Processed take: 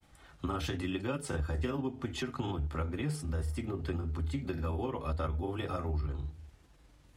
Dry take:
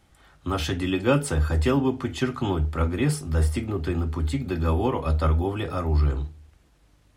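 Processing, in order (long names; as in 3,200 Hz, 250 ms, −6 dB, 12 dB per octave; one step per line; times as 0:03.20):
downward compressor 4 to 1, threshold −32 dBFS, peak gain reduction 14 dB
granular cloud, spray 24 ms, pitch spread up and down by 0 semitones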